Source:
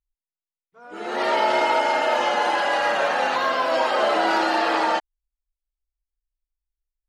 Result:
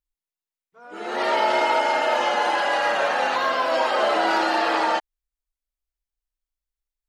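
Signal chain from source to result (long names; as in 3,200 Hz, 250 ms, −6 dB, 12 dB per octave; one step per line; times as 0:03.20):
low-shelf EQ 220 Hz −4 dB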